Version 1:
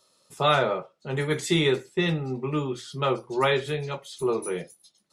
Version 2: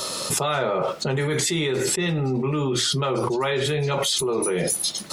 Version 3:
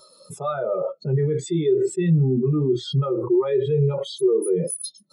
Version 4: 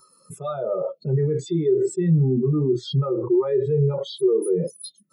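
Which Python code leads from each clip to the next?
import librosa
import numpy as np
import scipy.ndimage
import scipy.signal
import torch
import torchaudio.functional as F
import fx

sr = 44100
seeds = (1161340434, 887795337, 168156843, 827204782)

y1 = fx.env_flatten(x, sr, amount_pct=100)
y1 = F.gain(torch.from_numpy(y1), -4.5).numpy()
y2 = fx.spectral_expand(y1, sr, expansion=2.5)
y3 = fx.env_phaser(y2, sr, low_hz=600.0, high_hz=3100.0, full_db=-19.0)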